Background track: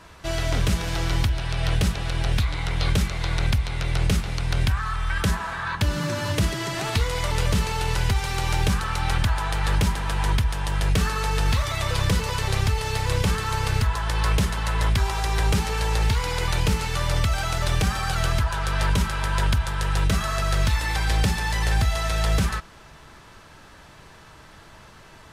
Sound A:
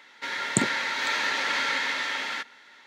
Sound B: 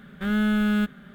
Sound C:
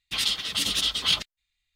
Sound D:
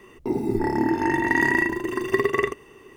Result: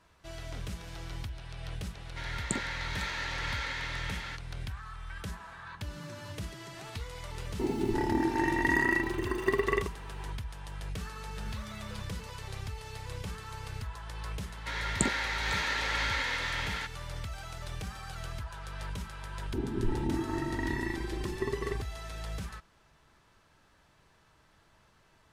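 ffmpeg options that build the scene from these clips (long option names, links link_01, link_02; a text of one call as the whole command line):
ffmpeg -i bed.wav -i cue0.wav -i cue1.wav -i cue2.wav -i cue3.wav -filter_complex "[1:a]asplit=2[link_01][link_02];[4:a]asplit=2[link_03][link_04];[0:a]volume=-17dB[link_05];[2:a]acompressor=threshold=-36dB:ratio=6:attack=3.2:release=140:knee=1:detection=peak[link_06];[link_04]aemphasis=mode=reproduction:type=riaa[link_07];[link_01]atrim=end=2.86,asetpts=PTS-STARTPTS,volume=-9.5dB,afade=type=in:duration=0.004:curve=hsin,afade=type=out:start_time=2.856:duration=0.004:curve=hsin,adelay=1940[link_08];[link_03]atrim=end=2.96,asetpts=PTS-STARTPTS,volume=-6.5dB,afade=type=in:duration=0.004:curve=hsin,afade=type=out:start_time=2.956:duration=0.004:curve=hsin,adelay=7340[link_09];[link_06]atrim=end=1.14,asetpts=PTS-STARTPTS,volume=-11dB,afade=type=in:duration=0.004:curve=hsin,afade=type=out:start_time=1.136:duration=0.004:curve=hsin,adelay=11160[link_10];[link_02]atrim=end=2.86,asetpts=PTS-STARTPTS,volume=-5dB,afade=type=in:duration=0.004:curve=hsin,afade=type=out:start_time=2.856:duration=0.004:curve=hsin,adelay=636804S[link_11];[link_07]atrim=end=2.96,asetpts=PTS-STARTPTS,volume=-15.5dB,afade=type=in:duration=0.004:curve=hsin,afade=type=out:start_time=2.956:duration=0.004:curve=hsin,adelay=19280[link_12];[link_05][link_08][link_09][link_10][link_11][link_12]amix=inputs=6:normalize=0" out.wav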